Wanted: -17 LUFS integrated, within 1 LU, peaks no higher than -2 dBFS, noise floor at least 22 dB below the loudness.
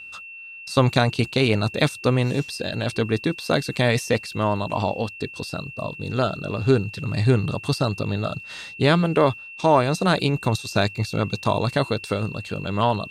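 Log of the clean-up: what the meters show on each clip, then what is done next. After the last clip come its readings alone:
steady tone 2700 Hz; tone level -37 dBFS; loudness -23.0 LUFS; peak -4.5 dBFS; loudness target -17.0 LUFS
-> notch 2700 Hz, Q 30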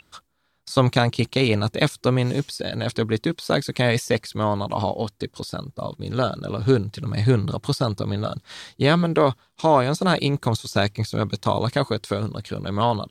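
steady tone none; loudness -23.0 LUFS; peak -5.0 dBFS; loudness target -17.0 LUFS
-> gain +6 dB; limiter -2 dBFS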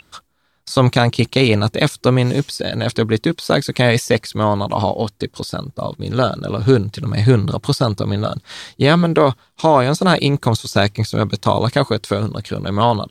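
loudness -17.5 LUFS; peak -2.0 dBFS; noise floor -60 dBFS

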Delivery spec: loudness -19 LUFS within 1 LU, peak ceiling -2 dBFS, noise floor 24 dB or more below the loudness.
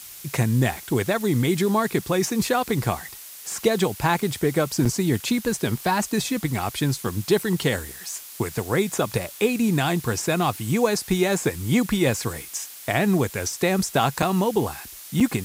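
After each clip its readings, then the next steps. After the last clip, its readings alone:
dropouts 3; longest dropout 5.5 ms; noise floor -41 dBFS; noise floor target -48 dBFS; loudness -23.5 LUFS; peak -7.0 dBFS; loudness target -19.0 LUFS
-> interpolate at 4.85/14.22/15.2, 5.5 ms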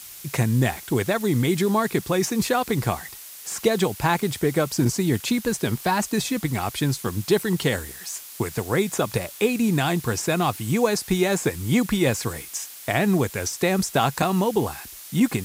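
dropouts 0; noise floor -41 dBFS; noise floor target -48 dBFS
-> denoiser 7 dB, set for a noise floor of -41 dBFS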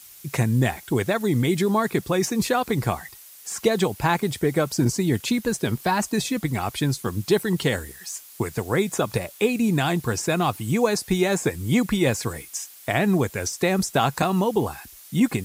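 noise floor -46 dBFS; noise floor target -48 dBFS
-> denoiser 6 dB, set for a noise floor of -46 dBFS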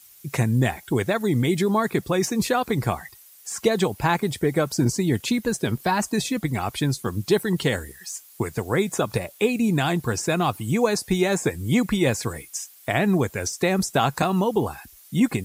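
noise floor -50 dBFS; loudness -23.5 LUFS; peak -7.5 dBFS; loudness target -19.0 LUFS
-> gain +4.5 dB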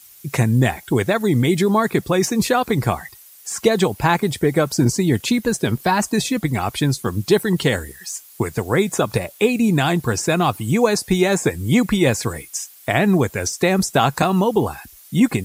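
loudness -19.0 LUFS; peak -3.0 dBFS; noise floor -45 dBFS

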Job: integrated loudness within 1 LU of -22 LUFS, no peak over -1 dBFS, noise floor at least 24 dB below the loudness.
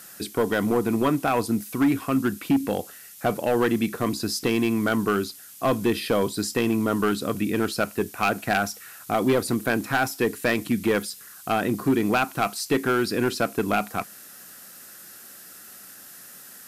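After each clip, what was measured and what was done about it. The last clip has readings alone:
clipped 1.5%; flat tops at -15.0 dBFS; noise floor -45 dBFS; noise floor target -49 dBFS; loudness -24.5 LUFS; peak -15.0 dBFS; loudness target -22.0 LUFS
-> clip repair -15 dBFS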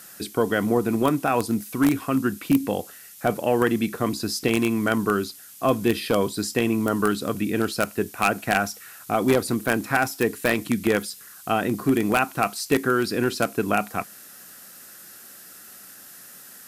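clipped 0.0%; noise floor -45 dBFS; noise floor target -48 dBFS
-> noise print and reduce 6 dB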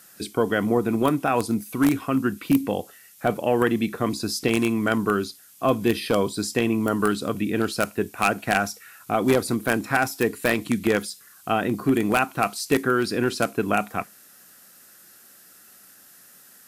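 noise floor -51 dBFS; loudness -23.5 LUFS; peak -6.0 dBFS; loudness target -22.0 LUFS
-> gain +1.5 dB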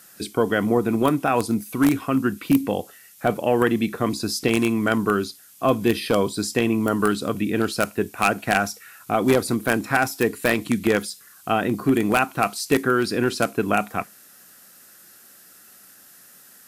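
loudness -22.0 LUFS; peak -4.5 dBFS; noise floor -50 dBFS

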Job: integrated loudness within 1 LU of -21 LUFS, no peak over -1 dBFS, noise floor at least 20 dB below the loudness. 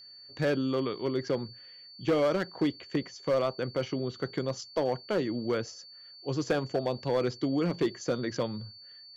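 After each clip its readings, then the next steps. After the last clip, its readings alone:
clipped 0.9%; flat tops at -20.5 dBFS; steady tone 4500 Hz; tone level -48 dBFS; loudness -31.0 LUFS; peak -20.5 dBFS; loudness target -21.0 LUFS
-> clip repair -20.5 dBFS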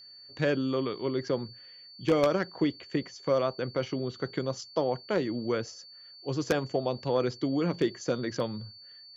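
clipped 0.0%; steady tone 4500 Hz; tone level -48 dBFS
-> notch 4500 Hz, Q 30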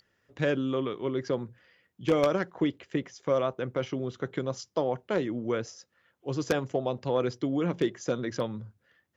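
steady tone none; loudness -30.5 LUFS; peak -11.5 dBFS; loudness target -21.0 LUFS
-> gain +9.5 dB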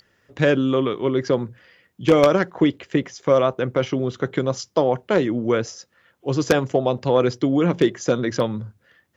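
loudness -21.0 LUFS; peak -2.0 dBFS; noise floor -66 dBFS

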